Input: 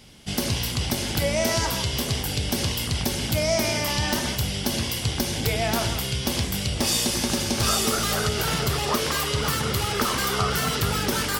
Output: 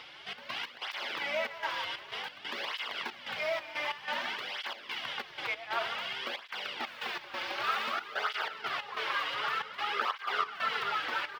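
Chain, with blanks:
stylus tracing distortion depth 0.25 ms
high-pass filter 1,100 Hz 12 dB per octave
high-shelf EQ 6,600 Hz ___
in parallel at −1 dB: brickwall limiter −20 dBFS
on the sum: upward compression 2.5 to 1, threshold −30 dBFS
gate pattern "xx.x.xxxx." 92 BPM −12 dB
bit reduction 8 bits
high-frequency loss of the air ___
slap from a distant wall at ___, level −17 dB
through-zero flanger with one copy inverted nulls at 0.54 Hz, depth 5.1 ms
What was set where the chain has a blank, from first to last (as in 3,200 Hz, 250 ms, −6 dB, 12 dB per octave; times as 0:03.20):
−3 dB, 350 metres, 43 metres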